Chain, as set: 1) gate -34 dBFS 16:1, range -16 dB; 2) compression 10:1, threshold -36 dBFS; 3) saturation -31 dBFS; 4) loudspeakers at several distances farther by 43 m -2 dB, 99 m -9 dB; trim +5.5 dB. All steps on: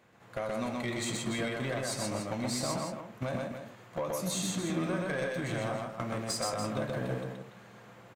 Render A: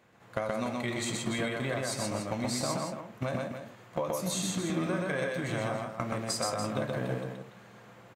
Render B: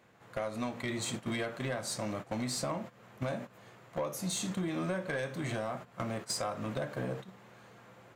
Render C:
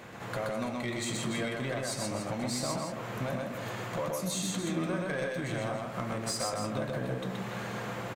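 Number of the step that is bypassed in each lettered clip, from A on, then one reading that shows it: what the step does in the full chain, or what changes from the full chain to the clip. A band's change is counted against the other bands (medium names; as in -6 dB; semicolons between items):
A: 3, distortion -17 dB; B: 4, echo-to-direct -1.0 dB to none; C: 1, momentary loudness spread change -5 LU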